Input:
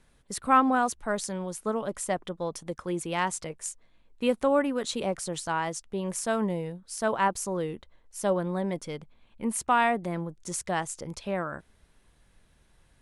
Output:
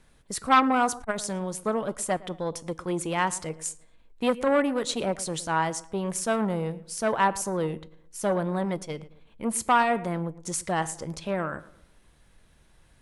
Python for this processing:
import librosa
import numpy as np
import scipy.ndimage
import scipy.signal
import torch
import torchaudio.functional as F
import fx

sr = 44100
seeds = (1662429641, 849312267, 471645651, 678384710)

y = fx.comb_fb(x, sr, f0_hz=160.0, decay_s=0.34, harmonics='all', damping=0.0, mix_pct=40)
y = fx.echo_filtered(y, sr, ms=113, feedback_pct=39, hz=2100.0, wet_db=-17.5)
y = fx.transformer_sat(y, sr, knee_hz=1100.0)
y = y * 10.0 ** (7.0 / 20.0)